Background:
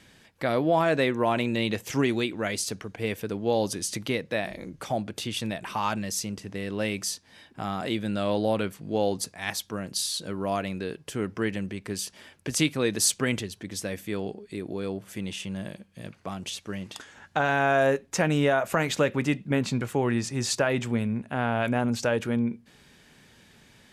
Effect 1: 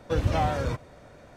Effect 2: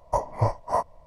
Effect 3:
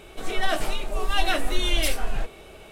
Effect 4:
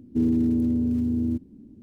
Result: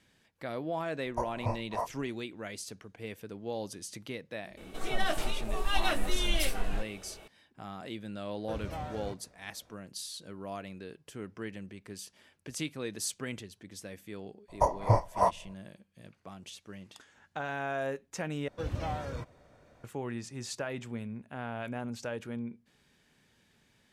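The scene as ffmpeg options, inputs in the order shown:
ffmpeg -i bed.wav -i cue0.wav -i cue1.wav -i cue2.wav -filter_complex "[2:a]asplit=2[link_01][link_02];[1:a]asplit=2[link_03][link_04];[0:a]volume=-12dB[link_05];[link_02]bandreject=frequency=230:width=12[link_06];[link_05]asplit=2[link_07][link_08];[link_07]atrim=end=18.484[link_09];[link_04]atrim=end=1.36,asetpts=PTS-STARTPTS,volume=-10dB[link_10];[link_08]atrim=start=19.836[link_11];[link_01]atrim=end=1.06,asetpts=PTS-STARTPTS,volume=-9.5dB,afade=type=in:duration=0.004:curve=hsin,afade=type=out:start_time=1.056:duration=0.004:curve=hsin,adelay=1040[link_12];[3:a]atrim=end=2.71,asetpts=PTS-STARTPTS,volume=-6dB,afade=type=in:duration=0.004:curve=hsin,afade=type=out:start_time=2.706:duration=0.004:curve=hsin,adelay=201537S[link_13];[link_03]atrim=end=1.36,asetpts=PTS-STARTPTS,volume=-14dB,afade=type=in:duration=0.004:curve=hsin,afade=type=out:start_time=1.356:duration=0.004:curve=hsin,adelay=8380[link_14];[link_06]atrim=end=1.06,asetpts=PTS-STARTPTS,volume=-1dB,afade=type=in:duration=0.004:curve=hsin,afade=type=out:start_time=1.056:duration=0.004:curve=hsin,adelay=14480[link_15];[link_09][link_10]acrossfade=duration=0.004:curve1=hsin:curve2=hsin[link_16];[link_16][link_11]acrossfade=duration=0.004:curve1=hsin:curve2=hsin[link_17];[link_17][link_12][link_13][link_14][link_15]amix=inputs=5:normalize=0" out.wav

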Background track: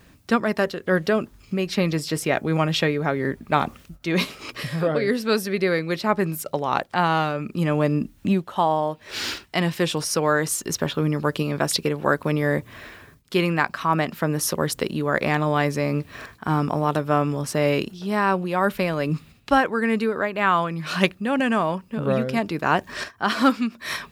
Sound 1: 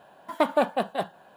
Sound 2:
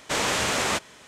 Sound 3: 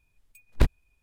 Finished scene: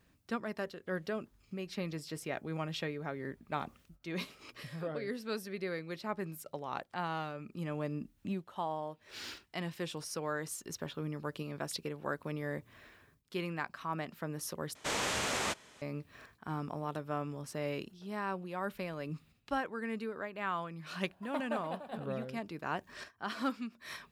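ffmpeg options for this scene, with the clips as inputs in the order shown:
ffmpeg -i bed.wav -i cue0.wav -i cue1.wav -filter_complex "[0:a]volume=-16.5dB[link_01];[1:a]aecho=1:1:292:0.266[link_02];[link_01]asplit=2[link_03][link_04];[link_03]atrim=end=14.754[link_05];[2:a]atrim=end=1.07,asetpts=PTS-STARTPTS,volume=-9dB[link_06];[link_04]atrim=start=15.816[link_07];[link_02]atrim=end=1.36,asetpts=PTS-STARTPTS,volume=-16dB,afade=type=in:duration=0.004:curve=hsin,afade=type=out:start_time=1.356:duration=0.004:curve=hsin,adelay=20940[link_08];[link_05][link_06]acrossfade=duration=0.004:curve1=hsin:curve2=hsin[link_09];[link_09][link_07]acrossfade=duration=0.004:curve1=hsin:curve2=hsin[link_10];[link_10][link_08]amix=inputs=2:normalize=0" out.wav

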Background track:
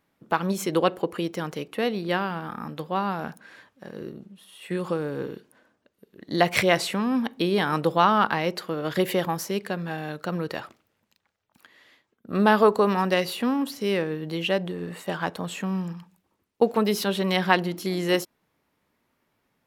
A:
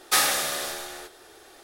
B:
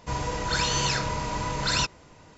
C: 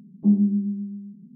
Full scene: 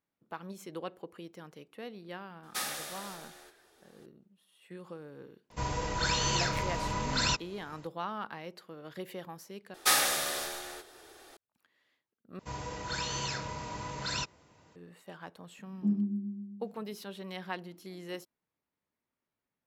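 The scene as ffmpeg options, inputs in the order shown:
ffmpeg -i bed.wav -i cue0.wav -i cue1.wav -i cue2.wav -filter_complex "[1:a]asplit=2[link_01][link_02];[2:a]asplit=2[link_03][link_04];[0:a]volume=-18dB[link_05];[link_04]highpass=64[link_06];[link_05]asplit=3[link_07][link_08][link_09];[link_07]atrim=end=9.744[link_10];[link_02]atrim=end=1.63,asetpts=PTS-STARTPTS,volume=-4dB[link_11];[link_08]atrim=start=11.366:end=12.394[link_12];[link_06]atrim=end=2.37,asetpts=PTS-STARTPTS,volume=-9.5dB[link_13];[link_09]atrim=start=14.756[link_14];[link_01]atrim=end=1.63,asetpts=PTS-STARTPTS,volume=-14.5dB,afade=type=in:duration=0.004:curve=hsin,afade=type=out:start_time=1.626:duration=0.004:curve=hsin,adelay=2430[link_15];[link_03]atrim=end=2.37,asetpts=PTS-STARTPTS,volume=-4dB,afade=type=in:duration=0.004:curve=hsin,afade=type=out:start_time=2.366:duration=0.004:curve=hsin,adelay=5500[link_16];[3:a]atrim=end=1.35,asetpts=PTS-STARTPTS,volume=-11dB,afade=type=in:duration=0.004:curve=hsin,afade=type=out:start_time=1.346:duration=0.004:curve=hsin,adelay=15590[link_17];[link_10][link_11]acrossfade=duration=0.004:curve1=hsin:curve2=hsin[link_18];[link_18][link_12]acrossfade=duration=0.004:curve1=hsin:curve2=hsin[link_19];[link_19][link_13]acrossfade=duration=0.004:curve1=hsin:curve2=hsin[link_20];[link_20][link_14]acrossfade=duration=0.004:curve1=hsin:curve2=hsin[link_21];[link_21][link_15][link_16][link_17]amix=inputs=4:normalize=0" out.wav

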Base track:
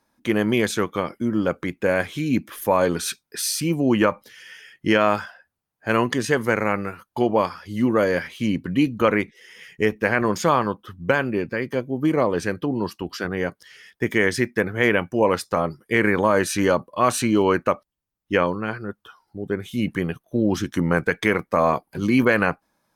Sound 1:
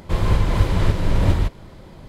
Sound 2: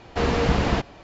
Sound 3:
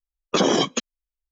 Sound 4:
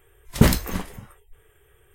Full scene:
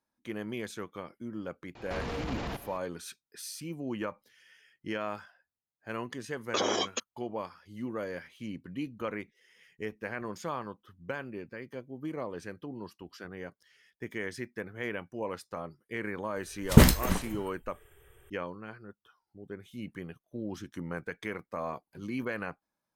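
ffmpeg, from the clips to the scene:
ffmpeg -i bed.wav -i cue0.wav -i cue1.wav -i cue2.wav -i cue3.wav -filter_complex "[0:a]volume=-17dB[link_01];[2:a]acompressor=threshold=-27dB:ratio=10:attack=0.1:release=33:knee=1:detection=peak[link_02];[3:a]highpass=400[link_03];[link_02]atrim=end=1.03,asetpts=PTS-STARTPTS,volume=-3.5dB,afade=type=in:duration=0.004:curve=hsin,afade=type=out:start_time=1.026:duration=0.004:curve=hsin,adelay=1750[link_04];[link_03]atrim=end=1.31,asetpts=PTS-STARTPTS,volume=-8dB,afade=type=in:duration=0.004:curve=hsin,afade=type=out:start_time=1.306:duration=0.004:curve=hsin,adelay=6200[link_05];[4:a]atrim=end=1.94,asetpts=PTS-STARTPTS,volume=-1dB,afade=type=in:duration=0.004:curve=hsin,afade=type=out:start_time=1.936:duration=0.004:curve=hsin,adelay=721476S[link_06];[link_01][link_04][link_05][link_06]amix=inputs=4:normalize=0" out.wav

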